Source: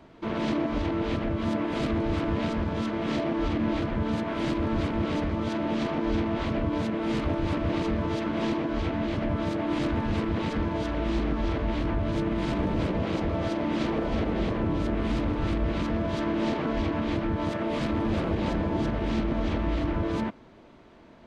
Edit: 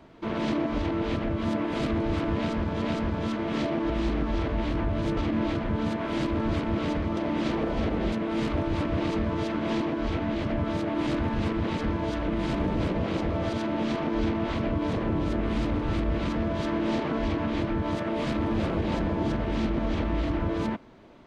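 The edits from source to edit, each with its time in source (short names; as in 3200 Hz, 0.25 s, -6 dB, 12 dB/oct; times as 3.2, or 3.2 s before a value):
2.36–2.82 loop, 2 plays
5.44–6.84 swap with 13.52–14.47
11–12.27 move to 3.44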